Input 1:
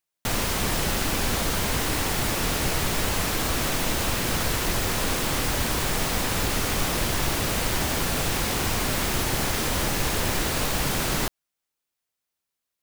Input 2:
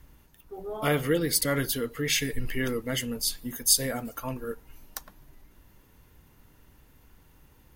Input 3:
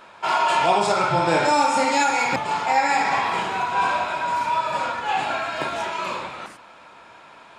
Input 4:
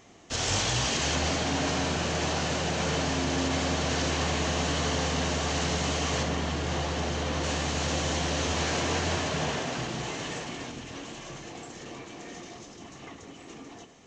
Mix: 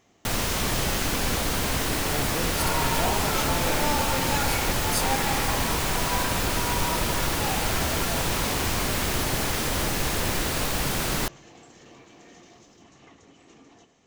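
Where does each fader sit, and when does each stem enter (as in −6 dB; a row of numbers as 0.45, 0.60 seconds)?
−1.0, −8.5, −10.0, −8.0 decibels; 0.00, 1.25, 2.35, 0.00 seconds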